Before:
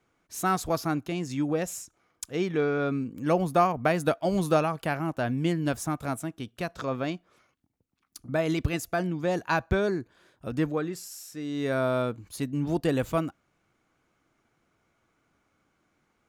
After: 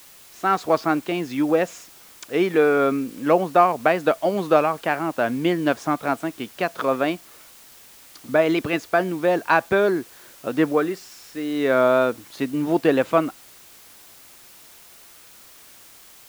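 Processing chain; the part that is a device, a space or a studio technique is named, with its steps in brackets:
dictaphone (band-pass filter 300–3,200 Hz; automatic gain control gain up to 11.5 dB; tape wow and flutter; white noise bed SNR 25 dB)
level −1 dB

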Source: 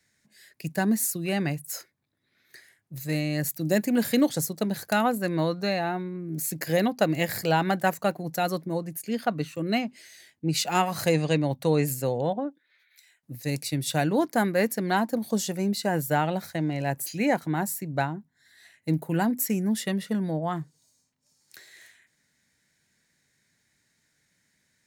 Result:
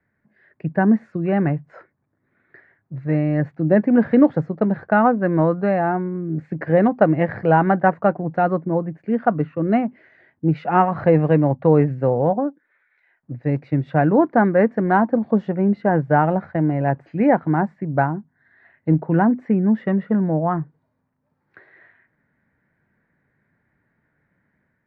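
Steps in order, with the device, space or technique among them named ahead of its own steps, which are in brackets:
action camera in a waterproof case (low-pass filter 1,600 Hz 24 dB per octave; automatic gain control gain up to 4 dB; level +4.5 dB; AAC 64 kbit/s 44,100 Hz)

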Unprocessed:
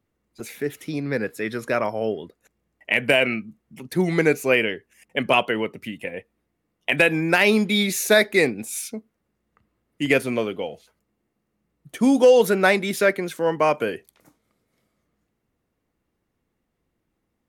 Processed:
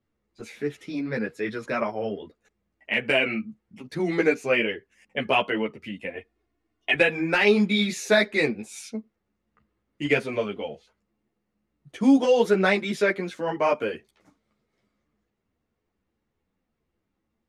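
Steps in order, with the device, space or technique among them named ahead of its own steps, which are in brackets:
0:06.15–0:06.95: comb filter 2.8 ms, depth 77%
string-machine ensemble chorus (string-ensemble chorus; low-pass filter 5,900 Hz 12 dB per octave)

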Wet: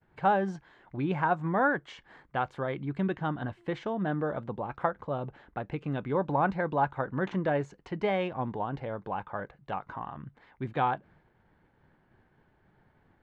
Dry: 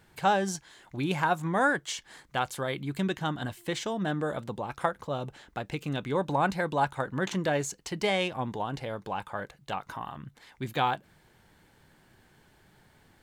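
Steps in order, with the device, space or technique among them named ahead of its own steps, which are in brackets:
hearing-loss simulation (low-pass filter 1,700 Hz 12 dB per octave; downward expander −57 dBFS)

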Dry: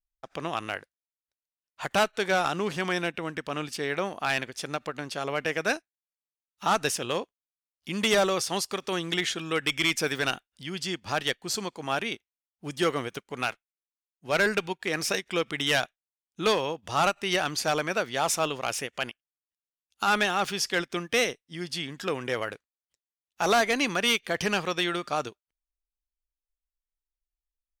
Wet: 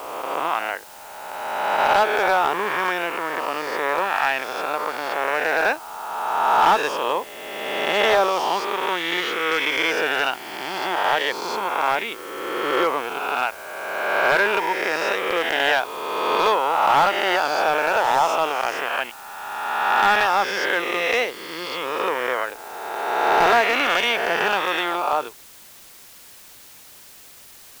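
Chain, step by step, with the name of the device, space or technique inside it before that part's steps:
peak hold with a rise ahead of every peak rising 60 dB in 1.98 s
drive-through speaker (band-pass filter 370–2,800 Hz; parametric band 920 Hz +9 dB 0.42 octaves; hard clipping −13 dBFS, distortion −18 dB; white noise bed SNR 23 dB)
level +2.5 dB

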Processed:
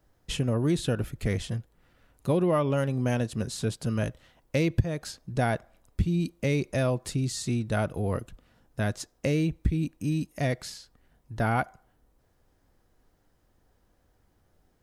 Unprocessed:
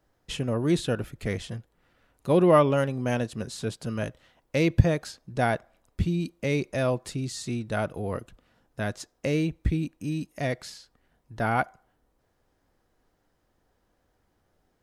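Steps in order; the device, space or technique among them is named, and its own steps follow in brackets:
ASMR close-microphone chain (low-shelf EQ 180 Hz +7 dB; downward compressor 5 to 1, threshold −21 dBFS, peak gain reduction 14.5 dB; high-shelf EQ 6,600 Hz +5 dB)

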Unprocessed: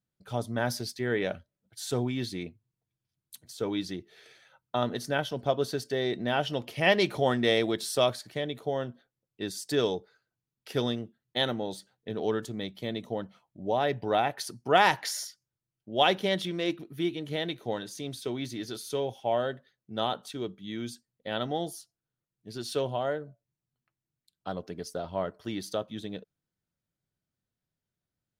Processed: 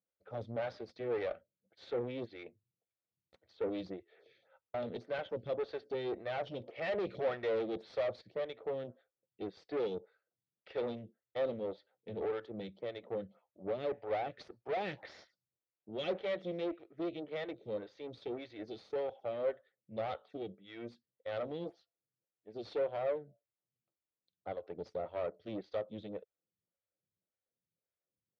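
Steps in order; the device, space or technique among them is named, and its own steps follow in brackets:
vibe pedal into a guitar amplifier (phaser with staggered stages 1.8 Hz; tube saturation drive 34 dB, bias 0.75; loudspeaker in its box 91–3,400 Hz, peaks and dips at 140 Hz −7 dB, 250 Hz −6 dB, 520 Hz +8 dB, 1,000 Hz −7 dB, 1,600 Hz −5 dB, 2,900 Hz −6 dB)
level +1 dB

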